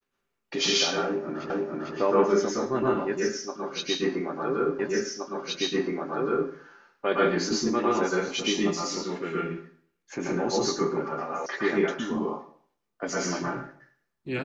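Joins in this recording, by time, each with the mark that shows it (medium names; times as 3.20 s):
1.50 s: repeat of the last 0.45 s
4.79 s: repeat of the last 1.72 s
11.46 s: sound stops dead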